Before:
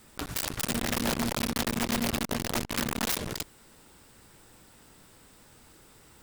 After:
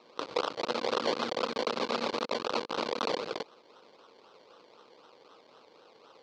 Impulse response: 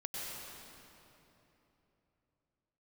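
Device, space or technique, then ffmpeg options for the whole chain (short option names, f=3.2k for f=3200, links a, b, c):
circuit-bent sampling toy: -af "acrusher=samples=27:mix=1:aa=0.000001:lfo=1:lforange=16.2:lforate=3.9,highpass=470,equalizer=f=490:t=q:w=4:g=7,equalizer=f=700:t=q:w=4:g=-5,equalizer=f=1.2k:t=q:w=4:g=4,equalizer=f=1.8k:t=q:w=4:g=-8,equalizer=f=4.3k:t=q:w=4:g=7,lowpass=f=5.2k:w=0.5412,lowpass=f=5.2k:w=1.3066,volume=2dB"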